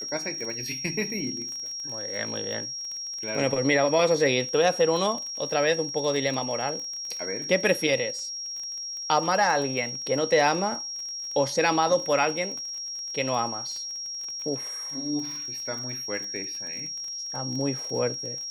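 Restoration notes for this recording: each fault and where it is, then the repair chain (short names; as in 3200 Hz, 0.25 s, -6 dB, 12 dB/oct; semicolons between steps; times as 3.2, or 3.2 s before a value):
crackle 33/s -33 dBFS
tone 5600 Hz -32 dBFS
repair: de-click; notch 5600 Hz, Q 30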